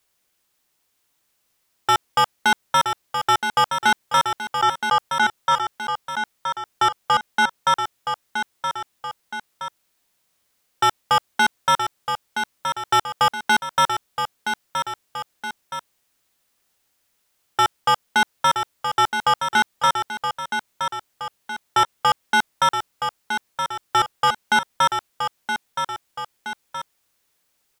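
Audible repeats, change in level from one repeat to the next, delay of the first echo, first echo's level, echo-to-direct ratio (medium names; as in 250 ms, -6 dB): 2, -6.0 dB, 971 ms, -7.0 dB, -6.0 dB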